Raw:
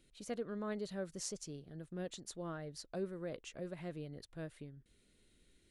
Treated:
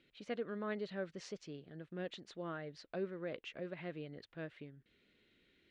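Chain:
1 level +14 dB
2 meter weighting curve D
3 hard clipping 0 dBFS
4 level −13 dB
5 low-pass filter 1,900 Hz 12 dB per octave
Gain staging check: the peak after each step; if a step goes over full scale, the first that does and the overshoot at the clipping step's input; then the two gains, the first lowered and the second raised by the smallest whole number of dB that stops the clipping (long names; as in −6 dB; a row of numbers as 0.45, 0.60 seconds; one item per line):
−10.0, −2.5, −2.5, −15.5, −29.0 dBFS
no step passes full scale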